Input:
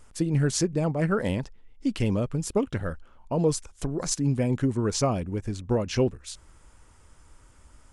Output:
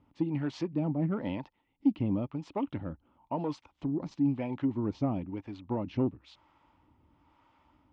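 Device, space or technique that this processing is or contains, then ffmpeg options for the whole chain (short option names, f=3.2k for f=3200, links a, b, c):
guitar amplifier with harmonic tremolo: -filter_complex "[0:a]acrossover=split=470[a][b];[a]aeval=exprs='val(0)*(1-0.7/2+0.7/2*cos(2*PI*1*n/s))':c=same[c];[b]aeval=exprs='val(0)*(1-0.7/2-0.7/2*cos(2*PI*1*n/s))':c=same[d];[c][d]amix=inputs=2:normalize=0,asoftclip=type=tanh:threshold=-18dB,highpass=100,equalizer=f=290:t=q:w=4:g=10,equalizer=f=450:t=q:w=4:g=-8,equalizer=f=890:t=q:w=4:g=8,equalizer=f=1.6k:t=q:w=4:g=-9,lowpass=f=3.4k:w=0.5412,lowpass=f=3.4k:w=1.3066,volume=-3dB"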